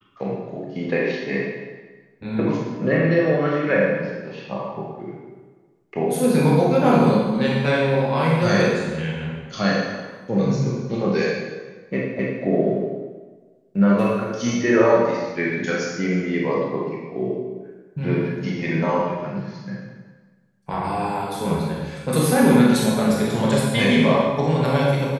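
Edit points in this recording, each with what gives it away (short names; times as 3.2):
12.19 repeat of the last 0.25 s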